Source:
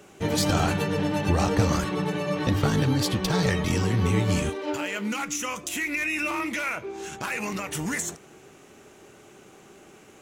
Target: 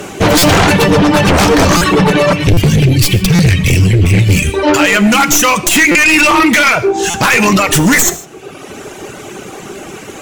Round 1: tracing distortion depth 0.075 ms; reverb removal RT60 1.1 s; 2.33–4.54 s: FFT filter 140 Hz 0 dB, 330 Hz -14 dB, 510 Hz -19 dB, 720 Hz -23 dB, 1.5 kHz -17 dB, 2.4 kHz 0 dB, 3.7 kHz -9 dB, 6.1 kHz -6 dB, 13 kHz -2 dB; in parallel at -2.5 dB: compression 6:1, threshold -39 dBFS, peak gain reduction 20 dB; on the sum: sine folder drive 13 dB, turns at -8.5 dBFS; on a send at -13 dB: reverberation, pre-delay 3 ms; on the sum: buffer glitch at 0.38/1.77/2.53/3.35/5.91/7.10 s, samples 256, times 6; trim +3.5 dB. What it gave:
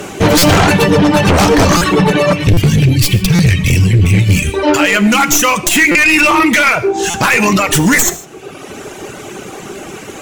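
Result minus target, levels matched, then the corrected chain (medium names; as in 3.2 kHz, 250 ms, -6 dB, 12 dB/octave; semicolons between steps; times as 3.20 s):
compression: peak gain reduction +9.5 dB
tracing distortion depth 0.075 ms; reverb removal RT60 1.1 s; 2.33–4.54 s: FFT filter 140 Hz 0 dB, 330 Hz -14 dB, 510 Hz -19 dB, 720 Hz -23 dB, 1.5 kHz -17 dB, 2.4 kHz 0 dB, 3.7 kHz -9 dB, 6.1 kHz -6 dB, 13 kHz -2 dB; in parallel at -2.5 dB: compression 6:1, threshold -27.5 dBFS, peak gain reduction 10.5 dB; on the sum: sine folder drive 13 dB, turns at -8.5 dBFS; on a send at -13 dB: reverberation, pre-delay 3 ms; on the sum: buffer glitch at 0.38/1.77/2.53/3.35/5.91/7.10 s, samples 256, times 6; trim +3.5 dB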